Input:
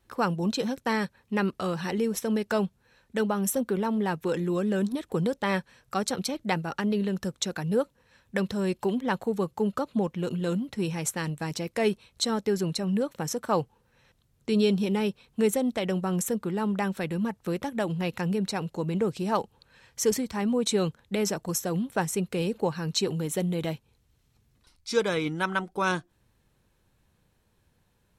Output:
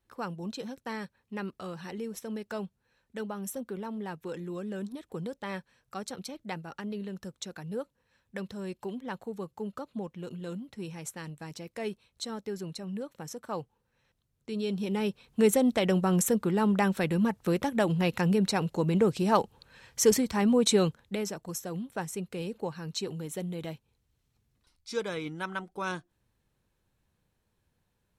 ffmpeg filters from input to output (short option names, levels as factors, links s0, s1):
-af "volume=1.33,afade=t=in:st=14.62:d=1.01:silence=0.237137,afade=t=out:st=20.71:d=0.56:silence=0.316228"